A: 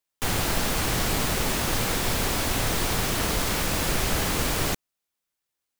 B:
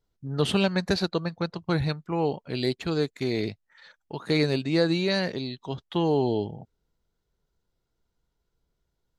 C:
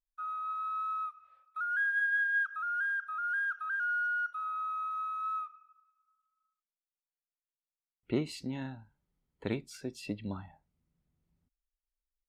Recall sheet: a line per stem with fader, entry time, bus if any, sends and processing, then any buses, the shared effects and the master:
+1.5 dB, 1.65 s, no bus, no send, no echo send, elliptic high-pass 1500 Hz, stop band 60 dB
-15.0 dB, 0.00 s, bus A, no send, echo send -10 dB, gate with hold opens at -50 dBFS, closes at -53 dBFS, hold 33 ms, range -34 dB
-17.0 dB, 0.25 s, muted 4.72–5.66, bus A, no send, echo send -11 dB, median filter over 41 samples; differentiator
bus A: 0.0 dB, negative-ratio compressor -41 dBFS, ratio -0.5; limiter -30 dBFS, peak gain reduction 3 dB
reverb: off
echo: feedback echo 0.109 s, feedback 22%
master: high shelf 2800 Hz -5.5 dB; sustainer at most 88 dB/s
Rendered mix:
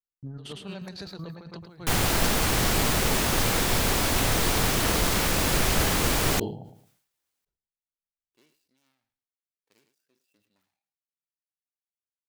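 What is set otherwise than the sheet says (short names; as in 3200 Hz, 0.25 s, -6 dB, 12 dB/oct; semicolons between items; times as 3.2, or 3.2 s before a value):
stem A: missing elliptic high-pass 1500 Hz, stop band 60 dB; stem B -15.0 dB -> -7.5 dB; master: missing high shelf 2800 Hz -5.5 dB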